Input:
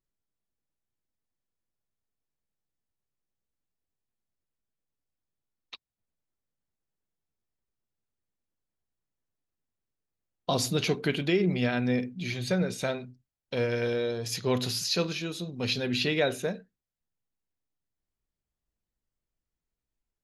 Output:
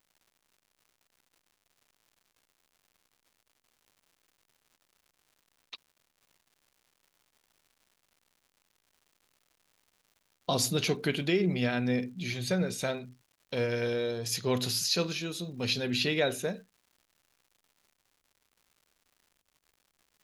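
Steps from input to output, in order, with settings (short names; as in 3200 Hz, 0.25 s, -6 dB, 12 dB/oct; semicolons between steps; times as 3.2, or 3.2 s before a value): high shelf 6300 Hz +7 dB; crackle 210/s -51 dBFS; gain -2 dB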